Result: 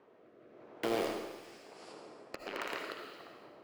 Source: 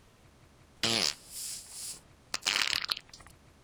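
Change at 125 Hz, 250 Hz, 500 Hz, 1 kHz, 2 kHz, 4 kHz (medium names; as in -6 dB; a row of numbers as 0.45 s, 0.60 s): -8.5 dB, +2.0 dB, +7.0 dB, -0.5 dB, -8.5 dB, -17.0 dB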